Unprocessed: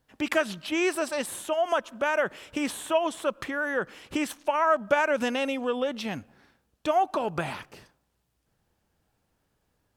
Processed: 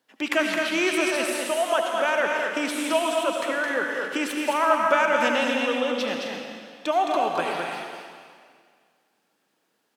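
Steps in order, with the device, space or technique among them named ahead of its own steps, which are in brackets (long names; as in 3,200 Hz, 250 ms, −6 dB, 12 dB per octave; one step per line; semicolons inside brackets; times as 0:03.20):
stadium PA (high-pass filter 220 Hz 24 dB per octave; parametric band 3,200 Hz +4 dB 2.2 octaves; loudspeakers that aren't time-aligned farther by 74 metres −5 dB, 88 metres −10 dB; convolution reverb RT60 2.0 s, pre-delay 68 ms, DRR 3.5 dB)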